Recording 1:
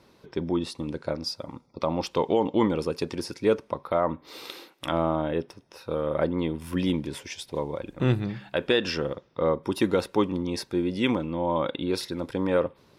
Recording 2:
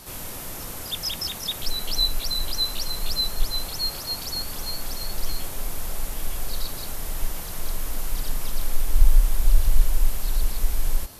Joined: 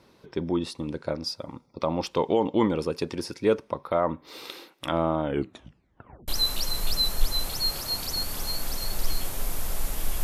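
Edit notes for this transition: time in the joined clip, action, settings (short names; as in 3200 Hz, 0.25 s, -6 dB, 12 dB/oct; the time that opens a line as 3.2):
recording 1
5.23 tape stop 1.05 s
6.28 switch to recording 2 from 2.47 s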